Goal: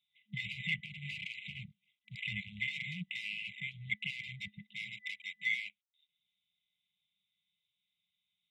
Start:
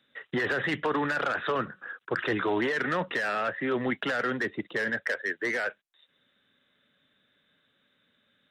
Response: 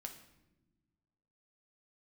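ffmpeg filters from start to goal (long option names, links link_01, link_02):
-af "tiltshelf=frequency=1300:gain=-5,afwtdn=0.0224,afftfilt=real='re*(1-between(b*sr/4096,210,2000))':imag='im*(1-between(b*sr/4096,210,2000))':win_size=4096:overlap=0.75"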